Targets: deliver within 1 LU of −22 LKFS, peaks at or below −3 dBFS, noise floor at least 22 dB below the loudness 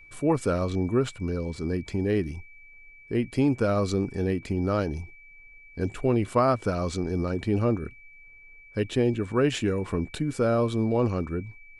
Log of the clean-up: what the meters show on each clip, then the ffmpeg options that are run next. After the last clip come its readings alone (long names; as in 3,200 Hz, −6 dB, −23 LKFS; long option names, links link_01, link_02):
interfering tone 2,300 Hz; level of the tone −49 dBFS; integrated loudness −27.0 LKFS; sample peak −11.0 dBFS; target loudness −22.0 LKFS
→ -af "bandreject=frequency=2300:width=30"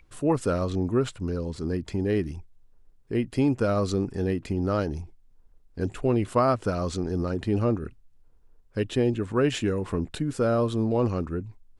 interfering tone none found; integrated loudness −27.0 LKFS; sample peak −11.0 dBFS; target loudness −22.0 LKFS
→ -af "volume=5dB"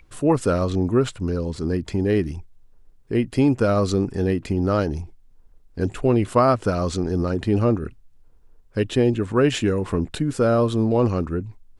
integrated loudness −22.0 LKFS; sample peak −6.0 dBFS; background noise floor −53 dBFS